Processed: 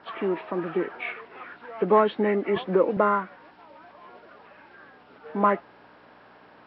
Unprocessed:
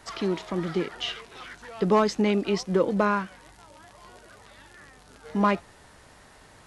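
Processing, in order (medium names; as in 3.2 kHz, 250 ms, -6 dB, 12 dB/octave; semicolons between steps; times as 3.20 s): knee-point frequency compression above 1.3 kHz 1.5:1; hum 60 Hz, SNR 25 dB; band-pass 290–2200 Hz; 2.56–2.97 s: three bands compressed up and down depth 40%; trim +3 dB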